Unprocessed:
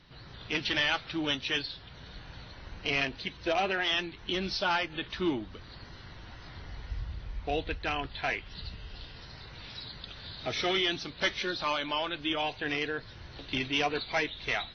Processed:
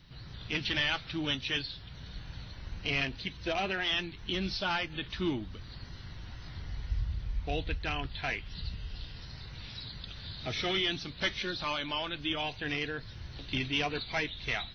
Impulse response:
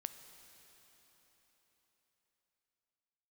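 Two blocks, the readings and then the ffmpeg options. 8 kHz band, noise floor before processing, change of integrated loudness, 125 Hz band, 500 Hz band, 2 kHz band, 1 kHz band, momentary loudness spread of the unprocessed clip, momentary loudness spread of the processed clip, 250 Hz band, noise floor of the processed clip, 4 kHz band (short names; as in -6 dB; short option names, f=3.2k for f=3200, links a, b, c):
n/a, -49 dBFS, -2.0 dB, +3.5 dB, -4.0 dB, -2.0 dB, -4.5 dB, 19 LU, 15 LU, -1.5 dB, -47 dBFS, -1.0 dB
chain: -filter_complex "[0:a]bass=f=250:g=10,treble=f=4k:g=-4,crystalizer=i=3.5:c=0,acrossover=split=5000[a][b];[b]acompressor=threshold=-48dB:ratio=4:attack=1:release=60[c];[a][c]amix=inputs=2:normalize=0,volume=-5.5dB"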